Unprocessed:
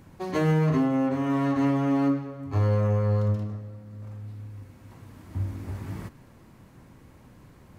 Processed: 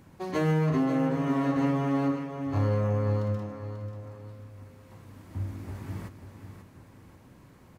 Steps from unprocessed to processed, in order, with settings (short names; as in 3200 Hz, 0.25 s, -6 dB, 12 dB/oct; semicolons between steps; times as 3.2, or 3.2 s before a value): low shelf 62 Hz -6.5 dB; on a send: feedback echo 0.539 s, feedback 38%, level -9 dB; on the sum: gain -2 dB